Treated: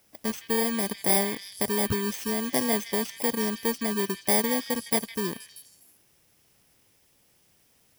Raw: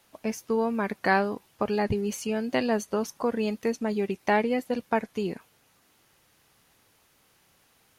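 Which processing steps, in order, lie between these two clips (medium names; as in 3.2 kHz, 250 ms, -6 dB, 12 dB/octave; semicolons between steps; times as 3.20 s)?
bit-reversed sample order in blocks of 32 samples; repeats whose band climbs or falls 159 ms, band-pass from 2.7 kHz, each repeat 0.7 oct, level -6.5 dB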